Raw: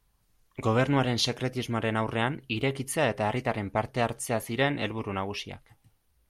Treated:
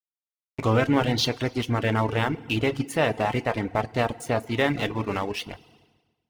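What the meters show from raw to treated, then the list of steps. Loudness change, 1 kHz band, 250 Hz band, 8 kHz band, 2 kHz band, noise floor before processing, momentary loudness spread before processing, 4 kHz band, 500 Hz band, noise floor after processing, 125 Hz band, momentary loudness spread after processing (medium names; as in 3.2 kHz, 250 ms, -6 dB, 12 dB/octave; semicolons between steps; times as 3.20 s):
+3.0 dB, +3.0 dB, +4.0 dB, -2.0 dB, +3.0 dB, -70 dBFS, 8 LU, +2.5 dB, +3.5 dB, under -85 dBFS, +3.5 dB, 7 LU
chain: distance through air 57 m; in parallel at +2.5 dB: peak limiter -22.5 dBFS, peak gain reduction 11 dB; on the sum: crossover distortion -37 dBFS; FDN reverb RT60 1.2 s, low-frequency decay 1.1×, high-frequency decay 0.95×, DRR 7.5 dB; reverb removal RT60 0.51 s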